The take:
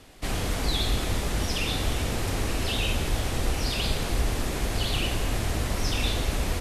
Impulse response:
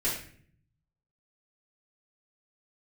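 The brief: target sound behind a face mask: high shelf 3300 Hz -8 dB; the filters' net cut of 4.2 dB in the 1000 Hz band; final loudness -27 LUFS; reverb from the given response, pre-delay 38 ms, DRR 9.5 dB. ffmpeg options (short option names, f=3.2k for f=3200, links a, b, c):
-filter_complex "[0:a]equalizer=f=1k:t=o:g=-5,asplit=2[a][b];[1:a]atrim=start_sample=2205,adelay=38[c];[b][c]afir=irnorm=-1:irlink=0,volume=-17dB[d];[a][d]amix=inputs=2:normalize=0,highshelf=f=3.3k:g=-8,volume=2dB"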